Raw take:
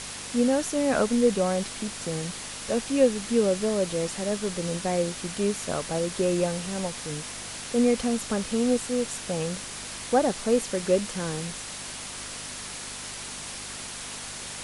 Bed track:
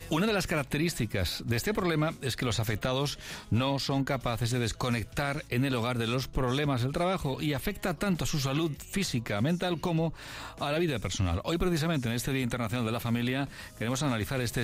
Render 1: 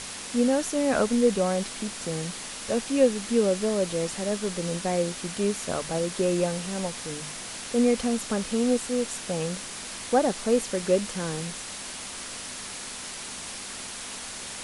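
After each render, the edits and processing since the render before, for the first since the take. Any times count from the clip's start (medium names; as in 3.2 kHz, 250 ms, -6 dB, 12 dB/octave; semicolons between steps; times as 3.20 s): de-hum 50 Hz, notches 3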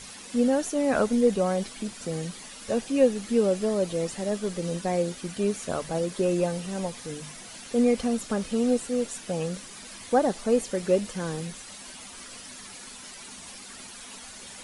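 noise reduction 10 dB, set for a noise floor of -38 dBFS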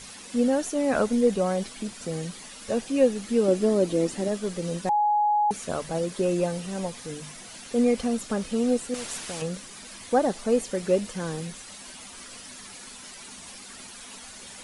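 3.48–4.28 s: peaking EQ 300 Hz +11.5 dB; 4.89–5.51 s: bleep 836 Hz -19 dBFS; 8.94–9.42 s: spectrum-flattening compressor 2:1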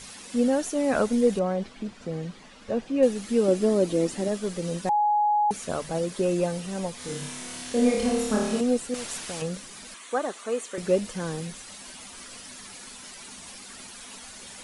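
1.39–3.03 s: tape spacing loss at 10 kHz 20 dB; 6.97–8.61 s: flutter echo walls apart 4.8 m, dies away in 0.9 s; 9.94–10.78 s: cabinet simulation 450–9900 Hz, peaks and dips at 550 Hz -5 dB, 800 Hz -6 dB, 1.2 kHz +5 dB, 5 kHz -9 dB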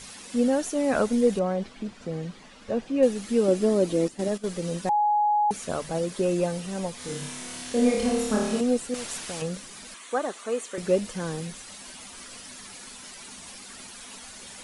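4.08–4.48 s: gate -32 dBFS, range -11 dB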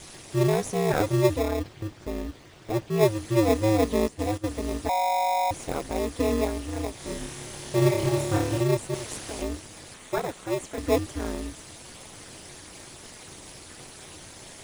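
ring modulator 110 Hz; in parallel at -4.5 dB: sample-rate reducer 1.5 kHz, jitter 0%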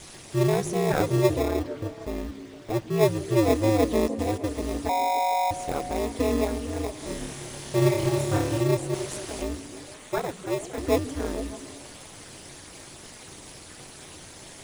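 repeats whose band climbs or falls 152 ms, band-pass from 210 Hz, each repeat 0.7 oct, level -7 dB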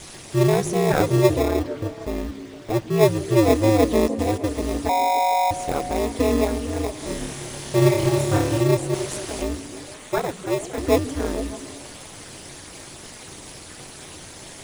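trim +4.5 dB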